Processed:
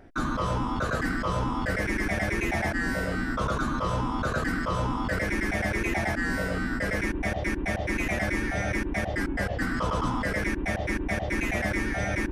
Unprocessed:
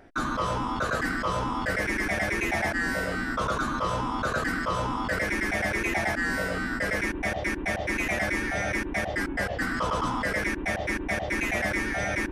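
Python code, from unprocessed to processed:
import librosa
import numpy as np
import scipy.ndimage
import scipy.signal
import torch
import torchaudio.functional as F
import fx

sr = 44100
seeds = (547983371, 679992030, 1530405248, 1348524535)

y = fx.low_shelf(x, sr, hz=300.0, db=8.0)
y = y * librosa.db_to_amplitude(-2.5)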